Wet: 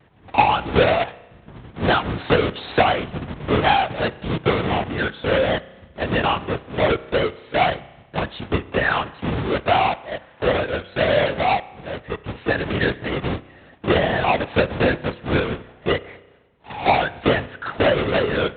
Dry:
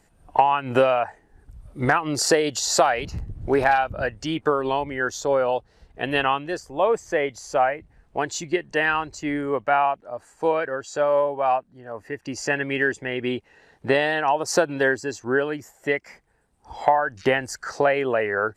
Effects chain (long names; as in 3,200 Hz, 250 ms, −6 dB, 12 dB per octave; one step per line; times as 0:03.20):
each half-wave held at its own peak
in parallel at −1 dB: downward compressor, threshold −32 dBFS, peak gain reduction 21 dB
on the sum: linear-prediction vocoder at 8 kHz whisper
high-pass filter 82 Hz 12 dB per octave
spring reverb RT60 1.1 s, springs 32 ms, chirp 50 ms, DRR 17.5 dB
pitch vibrato 0.55 Hz 17 cents
level −2 dB